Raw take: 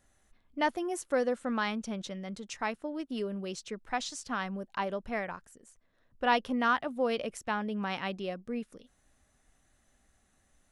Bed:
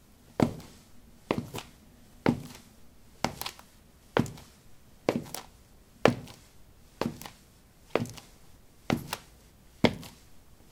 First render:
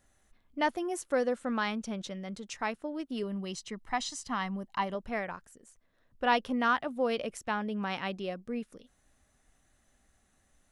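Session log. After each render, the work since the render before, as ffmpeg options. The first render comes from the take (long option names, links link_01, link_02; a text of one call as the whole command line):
ffmpeg -i in.wav -filter_complex "[0:a]asettb=1/sr,asplit=3[link_01][link_02][link_03];[link_01]atrim=end=3.234[link_04];[link_02]atrim=start=3.23:end=4.95,asetpts=PTS-STARTPTS,afade=type=in:duration=0.004:curve=qsin,afade=type=out:start_time=1.716:duration=0.004:curve=qsin,aecho=1:1:1:0.47,atrim=end_sample=75852[link_05];[link_03]atrim=start=4.946[link_06];[link_04][link_05]acrossfade=duration=0.004:curve1=hsin:curve2=qsin[link_07];[link_07][link_06]acrossfade=duration=0.004:curve1=qsin:curve2=hsin" out.wav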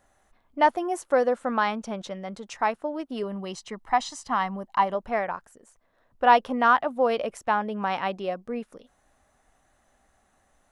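ffmpeg -i in.wav -af "equalizer=frequency=830:width_type=o:width=1.9:gain=11" out.wav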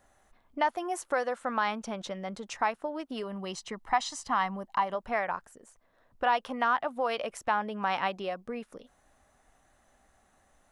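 ffmpeg -i in.wav -filter_complex "[0:a]acrossover=split=770[link_01][link_02];[link_01]acompressor=threshold=-35dB:ratio=6[link_03];[link_02]alimiter=limit=-18dB:level=0:latency=1:release=147[link_04];[link_03][link_04]amix=inputs=2:normalize=0" out.wav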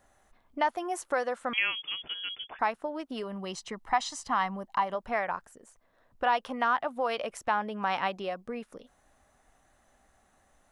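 ffmpeg -i in.wav -filter_complex "[0:a]asettb=1/sr,asplit=3[link_01][link_02][link_03];[link_01]atrim=end=1.534[link_04];[link_02]atrim=start=1.53:end=2.59,asetpts=PTS-STARTPTS,afade=type=in:duration=0.004:curve=qsin,afade=type=out:start_time=1.056:duration=0.004:curve=qsin,lowpass=frequency=3000:width_type=q:width=0.5098,lowpass=frequency=3000:width_type=q:width=0.6013,lowpass=frequency=3000:width_type=q:width=0.9,lowpass=frequency=3000:width_type=q:width=2.563,afreqshift=-3500[link_05];[link_03]atrim=start=2.586[link_06];[link_04][link_05]acrossfade=duration=0.004:curve1=hsin:curve2=qsin[link_07];[link_07][link_06]acrossfade=duration=0.004:curve1=qsin:curve2=hsin" out.wav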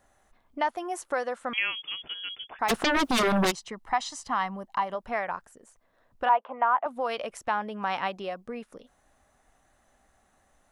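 ffmpeg -i in.wav -filter_complex "[0:a]asplit=3[link_01][link_02][link_03];[link_01]afade=type=out:start_time=2.68:duration=0.02[link_04];[link_02]aeval=exprs='0.1*sin(PI/2*7.94*val(0)/0.1)':channel_layout=same,afade=type=in:start_time=2.68:duration=0.02,afade=type=out:start_time=3.5:duration=0.02[link_05];[link_03]afade=type=in:start_time=3.5:duration=0.02[link_06];[link_04][link_05][link_06]amix=inputs=3:normalize=0,asettb=1/sr,asplit=3[link_07][link_08][link_09];[link_07]atrim=end=6.294[link_10];[link_08]atrim=start=6.29:end=6.86,asetpts=PTS-STARTPTS,afade=type=in:duration=0.004:curve=qsin,afade=type=out:start_time=0.566:duration=0.004:curve=qsin,highpass=430,equalizer=frequency=650:width_type=q:width=4:gain=6,equalizer=frequency=960:width_type=q:width=4:gain=6,equalizer=frequency=1800:width_type=q:width=4:gain=-6,lowpass=frequency=2200:width=0.5412,lowpass=frequency=2200:width=1.3066[link_11];[link_09]atrim=start=6.856[link_12];[link_10][link_11]acrossfade=duration=0.004:curve1=hsin:curve2=qsin[link_13];[link_13][link_12]acrossfade=duration=0.004:curve1=qsin:curve2=hsin" out.wav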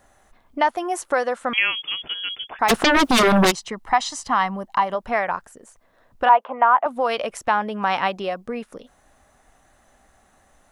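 ffmpeg -i in.wav -af "volume=8dB" out.wav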